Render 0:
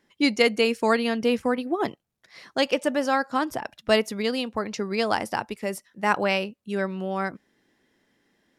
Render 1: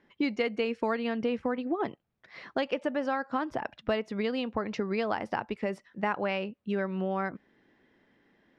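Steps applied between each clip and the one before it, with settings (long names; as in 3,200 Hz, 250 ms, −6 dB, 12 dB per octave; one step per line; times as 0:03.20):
low-pass filter 2,700 Hz 12 dB per octave
downward compressor 4 to 1, threshold −30 dBFS, peak gain reduction 13 dB
level +2.5 dB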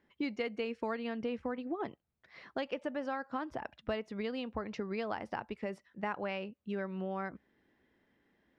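parametric band 67 Hz +10 dB 0.59 octaves
level −7 dB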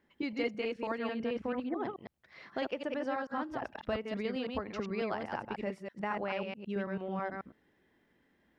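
delay that plays each chunk backwards 109 ms, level −2.5 dB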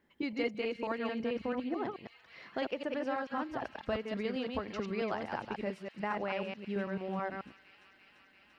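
delay with a high-pass on its return 342 ms, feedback 84%, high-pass 2,600 Hz, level −12.5 dB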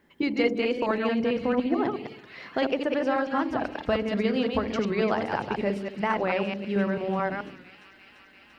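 delay with a low-pass on its return 65 ms, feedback 61%, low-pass 420 Hz, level −5.5 dB
wow of a warped record 45 rpm, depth 100 cents
level +9 dB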